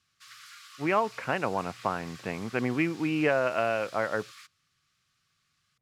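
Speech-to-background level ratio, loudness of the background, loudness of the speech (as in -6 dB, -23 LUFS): 18.5 dB, -48.0 LUFS, -29.5 LUFS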